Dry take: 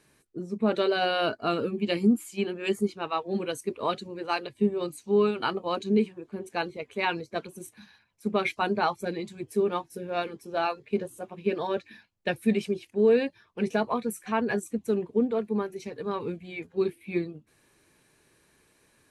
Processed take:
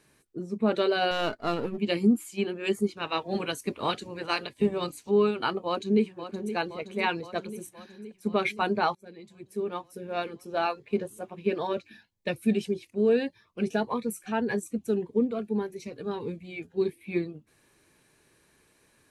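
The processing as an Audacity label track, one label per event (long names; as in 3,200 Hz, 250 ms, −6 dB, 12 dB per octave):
1.110000	1.780000	gain on one half-wave negative side −7 dB
2.960000	5.090000	ceiling on every frequency bin ceiling under each frame's peak by 13 dB
5.660000	6.550000	delay throw 520 ms, feedback 70%, level −11 dB
8.950000	10.450000	fade in, from −22.5 dB
11.730000	16.990000	phaser whose notches keep moving one way rising 1.7 Hz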